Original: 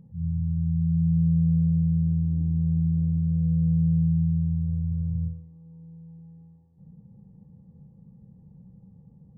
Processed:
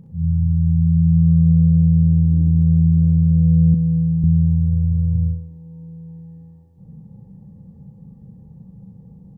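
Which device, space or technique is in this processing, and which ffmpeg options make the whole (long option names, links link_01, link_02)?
slapback doubling: -filter_complex "[0:a]asplit=3[link_01][link_02][link_03];[link_02]adelay=37,volume=-7.5dB[link_04];[link_03]adelay=63,volume=-5dB[link_05];[link_01][link_04][link_05]amix=inputs=3:normalize=0,asettb=1/sr,asplit=3[link_06][link_07][link_08];[link_06]atrim=end=3.744[link_09];[link_07]atrim=start=3.74:end=4.24,asetpts=PTS-STARTPTS,afade=type=in:duration=0.004:curve=qsin,afade=type=out:start_time=0.496:duration=0.004:curve=qsin,highpass=frequency=230:poles=1[link_10];[link_08]atrim=start=4.236[link_11];[link_09][link_10]acrossfade=duration=0.004:curve1=hsin:curve2=qsin[link_12];[link_12][link_11]acrossfade=duration=0.004:curve1=qsin:curve2=hsin,volume=7.5dB"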